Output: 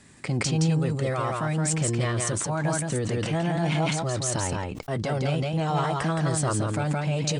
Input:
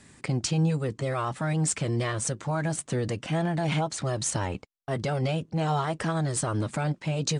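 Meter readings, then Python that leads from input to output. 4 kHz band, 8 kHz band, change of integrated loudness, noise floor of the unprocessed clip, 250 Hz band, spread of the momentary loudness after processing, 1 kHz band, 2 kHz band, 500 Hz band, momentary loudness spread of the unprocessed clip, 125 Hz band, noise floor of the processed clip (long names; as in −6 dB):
+2.0 dB, +2.5 dB, +2.5 dB, −61 dBFS, +2.0 dB, 4 LU, +2.5 dB, +3.0 dB, +2.5 dB, 4 LU, +2.5 dB, −36 dBFS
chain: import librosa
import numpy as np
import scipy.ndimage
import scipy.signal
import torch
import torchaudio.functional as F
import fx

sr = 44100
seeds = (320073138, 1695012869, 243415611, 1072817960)

p1 = x + fx.echo_single(x, sr, ms=169, db=-4.0, dry=0)
y = fx.sustainer(p1, sr, db_per_s=33.0)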